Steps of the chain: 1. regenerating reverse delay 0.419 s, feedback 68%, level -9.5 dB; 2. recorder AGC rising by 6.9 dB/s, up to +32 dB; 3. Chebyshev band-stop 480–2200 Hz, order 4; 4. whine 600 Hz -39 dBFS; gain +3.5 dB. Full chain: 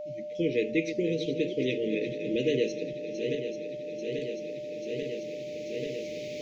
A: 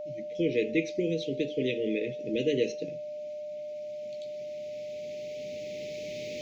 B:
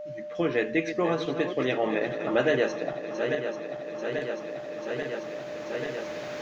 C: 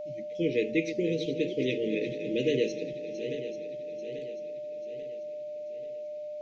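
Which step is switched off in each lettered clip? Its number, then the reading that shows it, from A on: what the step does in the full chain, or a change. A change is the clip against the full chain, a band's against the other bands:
1, momentary loudness spread change +1 LU; 3, 2 kHz band +7.0 dB; 2, momentary loudness spread change +1 LU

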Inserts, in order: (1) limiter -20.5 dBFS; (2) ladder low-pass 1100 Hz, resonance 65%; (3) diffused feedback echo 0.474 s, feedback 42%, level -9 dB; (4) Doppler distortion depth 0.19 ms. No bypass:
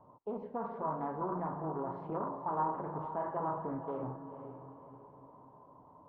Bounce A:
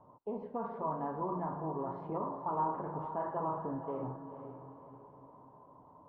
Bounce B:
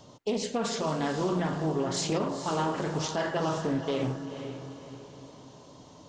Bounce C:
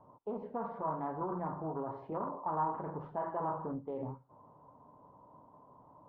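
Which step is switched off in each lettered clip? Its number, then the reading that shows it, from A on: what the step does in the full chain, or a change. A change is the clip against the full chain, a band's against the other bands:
4, 2 kHz band -2.5 dB; 2, 1 kHz band -8.5 dB; 3, momentary loudness spread change -13 LU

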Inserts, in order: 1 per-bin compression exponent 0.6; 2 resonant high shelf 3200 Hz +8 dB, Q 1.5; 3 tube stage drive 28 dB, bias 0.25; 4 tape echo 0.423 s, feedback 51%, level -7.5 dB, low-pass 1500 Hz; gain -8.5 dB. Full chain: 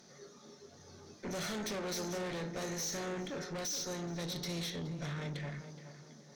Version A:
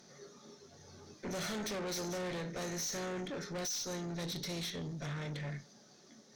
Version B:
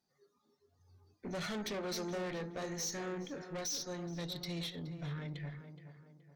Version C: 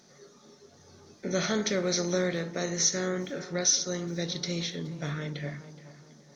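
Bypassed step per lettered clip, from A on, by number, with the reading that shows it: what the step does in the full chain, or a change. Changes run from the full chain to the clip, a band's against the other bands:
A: 4, echo-to-direct -30.0 dB to none; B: 1, momentary loudness spread change -5 LU; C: 3, crest factor change +10.0 dB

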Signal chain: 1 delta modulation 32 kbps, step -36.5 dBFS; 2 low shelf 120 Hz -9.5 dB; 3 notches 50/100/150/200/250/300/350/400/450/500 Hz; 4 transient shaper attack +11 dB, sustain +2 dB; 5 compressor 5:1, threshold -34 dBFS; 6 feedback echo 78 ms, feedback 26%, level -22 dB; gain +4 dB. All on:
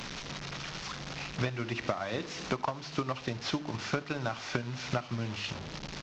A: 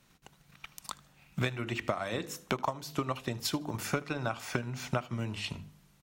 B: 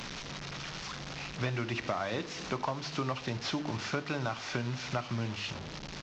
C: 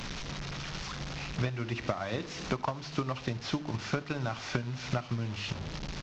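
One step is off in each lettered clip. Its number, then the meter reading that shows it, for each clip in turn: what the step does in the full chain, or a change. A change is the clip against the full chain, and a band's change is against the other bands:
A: 1, 8 kHz band +2.5 dB; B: 4, crest factor change -4.5 dB; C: 2, 125 Hz band +3.5 dB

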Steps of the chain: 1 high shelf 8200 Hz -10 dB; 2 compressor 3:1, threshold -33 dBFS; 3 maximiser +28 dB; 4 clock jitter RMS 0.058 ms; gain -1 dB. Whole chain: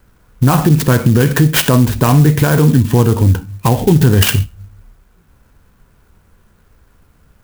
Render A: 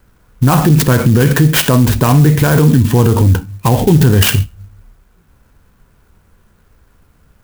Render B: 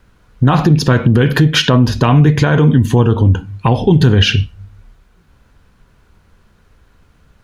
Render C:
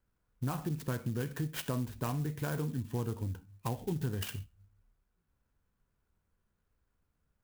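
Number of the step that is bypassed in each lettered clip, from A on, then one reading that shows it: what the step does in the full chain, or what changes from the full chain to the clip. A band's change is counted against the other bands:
2, mean gain reduction 6.5 dB; 4, 8 kHz band -7.5 dB; 3, crest factor change +4.5 dB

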